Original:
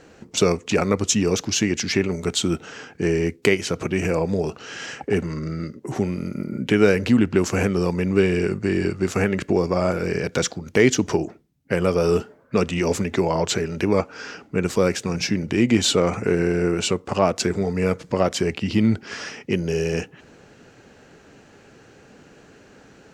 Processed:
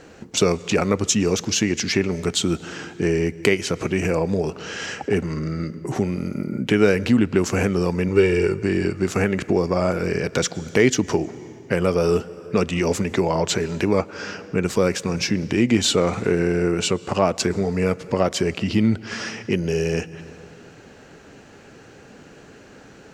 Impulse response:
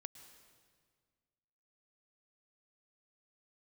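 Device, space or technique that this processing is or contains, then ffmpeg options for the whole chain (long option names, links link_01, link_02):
compressed reverb return: -filter_complex "[0:a]asplit=2[link_01][link_02];[1:a]atrim=start_sample=2205[link_03];[link_02][link_03]afir=irnorm=-1:irlink=0,acompressor=threshold=-33dB:ratio=6,volume=3.5dB[link_04];[link_01][link_04]amix=inputs=2:normalize=0,asettb=1/sr,asplit=3[link_05][link_06][link_07];[link_05]atrim=end=8.084[link_08];[link_06]atrim=start=8.08:end=8.63,asetpts=PTS-STARTPTS,afade=type=in:duration=0.004:curve=qsin,afade=type=out:start_time=0.546:duration=0.004:curve=qsin,aecho=1:1:2.2:0.57,atrim=end_sample=24255[link_09];[link_07]atrim=start=8.626[link_10];[link_08][link_09]acrossfade=duration=0.004:curve1=hsin:curve2=qsin[link_11];[link_11][link_10]acrossfade=duration=0.004:curve1=qsin:curve2=hsin,volume=-1.5dB"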